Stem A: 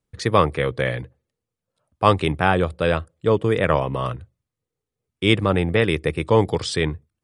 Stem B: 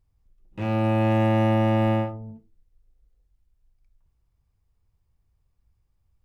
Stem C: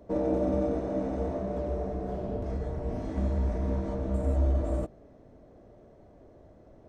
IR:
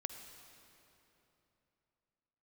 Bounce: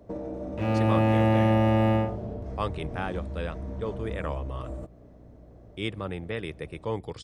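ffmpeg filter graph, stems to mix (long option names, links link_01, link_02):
-filter_complex "[0:a]aeval=exprs='val(0)+0.0141*(sin(2*PI*60*n/s)+sin(2*PI*2*60*n/s)/2+sin(2*PI*3*60*n/s)/3+sin(2*PI*4*60*n/s)/4+sin(2*PI*5*60*n/s)/5)':channel_layout=same,adelay=550,volume=-15dB,asplit=2[link_01][link_02];[link_02]volume=-23.5dB[link_03];[1:a]volume=-1dB[link_04];[2:a]equalizer=frequency=110:width_type=o:width=0.85:gain=6,acompressor=threshold=-32dB:ratio=6,volume=-0.5dB[link_05];[3:a]atrim=start_sample=2205[link_06];[link_03][link_06]afir=irnorm=-1:irlink=0[link_07];[link_01][link_04][link_05][link_07]amix=inputs=4:normalize=0"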